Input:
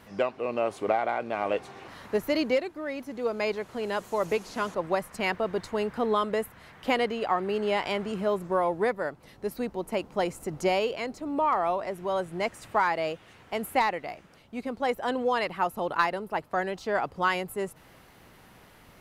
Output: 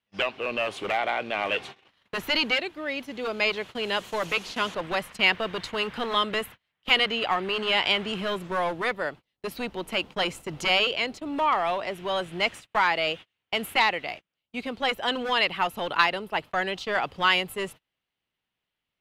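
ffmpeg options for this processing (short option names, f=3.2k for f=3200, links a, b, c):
-filter_complex "[0:a]agate=range=-36dB:threshold=-41dB:ratio=16:detection=peak,equalizer=f=3.1k:t=o:w=1.2:g=14.5,acrossover=split=750|1600[a][b][c];[a]aeval=exprs='0.0447*(abs(mod(val(0)/0.0447+3,4)-2)-1)':c=same[d];[d][b][c]amix=inputs=3:normalize=0"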